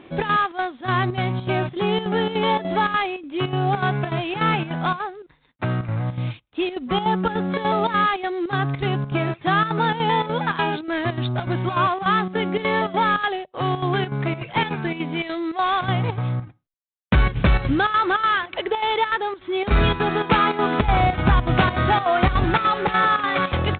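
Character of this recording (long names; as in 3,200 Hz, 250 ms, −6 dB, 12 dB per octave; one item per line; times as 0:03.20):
chopped level 3.4 Hz, depth 65%, duty 75%
IMA ADPCM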